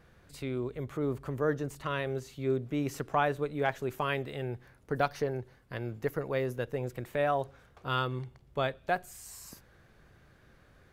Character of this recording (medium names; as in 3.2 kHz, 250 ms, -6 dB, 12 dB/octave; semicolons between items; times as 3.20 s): noise floor -61 dBFS; spectral tilt -5.0 dB/octave